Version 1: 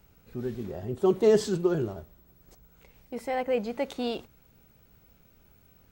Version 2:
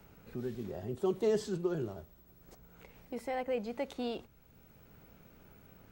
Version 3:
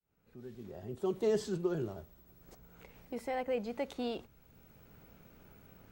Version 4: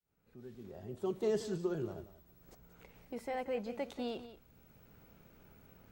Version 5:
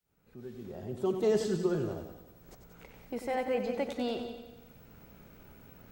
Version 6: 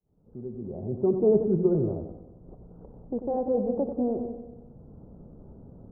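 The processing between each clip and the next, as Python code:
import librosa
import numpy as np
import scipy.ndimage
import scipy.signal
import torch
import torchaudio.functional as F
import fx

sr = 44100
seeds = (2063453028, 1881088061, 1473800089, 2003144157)

y1 = fx.band_squash(x, sr, depth_pct=40)
y1 = y1 * 10.0 ** (-6.5 / 20.0)
y2 = fx.fade_in_head(y1, sr, length_s=1.4)
y3 = y2 + 10.0 ** (-13.5 / 20.0) * np.pad(y2, (int(182 * sr / 1000.0), 0))[:len(y2)]
y3 = y3 * 10.0 ** (-2.5 / 20.0)
y4 = fx.echo_feedback(y3, sr, ms=93, feedback_pct=58, wet_db=-9.0)
y4 = y4 * 10.0 ** (5.5 / 20.0)
y5 = scipy.ndimage.gaussian_filter1d(y4, 12.0, mode='constant')
y5 = y5 * 10.0 ** (8.5 / 20.0)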